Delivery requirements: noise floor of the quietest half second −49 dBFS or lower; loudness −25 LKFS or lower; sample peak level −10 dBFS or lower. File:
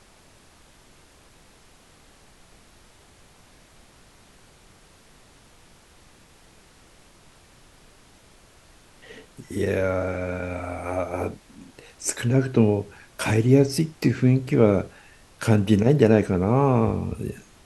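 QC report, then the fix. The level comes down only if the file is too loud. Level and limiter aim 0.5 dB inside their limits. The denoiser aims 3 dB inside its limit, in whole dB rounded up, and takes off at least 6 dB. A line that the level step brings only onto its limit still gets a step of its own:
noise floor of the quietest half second −53 dBFS: in spec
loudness −22.5 LKFS: out of spec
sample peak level −3.5 dBFS: out of spec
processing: level −3 dB
brickwall limiter −10.5 dBFS

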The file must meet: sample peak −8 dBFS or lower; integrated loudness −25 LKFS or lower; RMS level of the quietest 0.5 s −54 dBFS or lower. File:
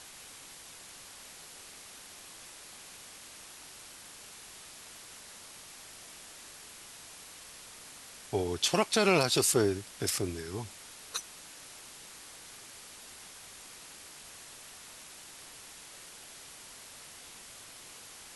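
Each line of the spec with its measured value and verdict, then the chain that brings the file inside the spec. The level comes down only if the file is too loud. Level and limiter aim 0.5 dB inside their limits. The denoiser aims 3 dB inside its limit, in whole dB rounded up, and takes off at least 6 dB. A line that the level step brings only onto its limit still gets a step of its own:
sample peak −11.0 dBFS: in spec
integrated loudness −29.5 LKFS: in spec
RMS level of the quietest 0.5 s −50 dBFS: out of spec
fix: broadband denoise 7 dB, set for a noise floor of −50 dBFS

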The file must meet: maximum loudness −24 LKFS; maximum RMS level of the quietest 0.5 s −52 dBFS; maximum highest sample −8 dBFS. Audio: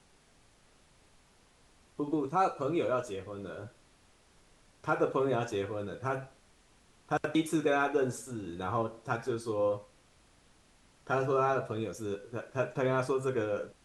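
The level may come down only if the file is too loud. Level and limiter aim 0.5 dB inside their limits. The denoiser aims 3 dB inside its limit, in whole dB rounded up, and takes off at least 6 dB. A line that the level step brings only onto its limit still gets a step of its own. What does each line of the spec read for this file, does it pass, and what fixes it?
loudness −32.5 LKFS: in spec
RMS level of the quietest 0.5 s −64 dBFS: in spec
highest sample −14.5 dBFS: in spec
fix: no processing needed

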